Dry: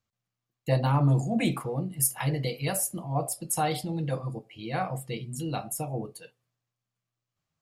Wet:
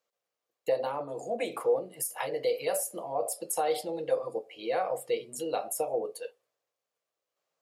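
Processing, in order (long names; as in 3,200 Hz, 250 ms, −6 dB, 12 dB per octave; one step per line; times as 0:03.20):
in parallel at −1.5 dB: brickwall limiter −20 dBFS, peak gain reduction 9 dB
on the sum: downward compressor 6 to 1, threshold −25 dBFS, peak gain reduction 9.5 dB
high-pass with resonance 490 Hz, resonance Q 3.8
level −4.5 dB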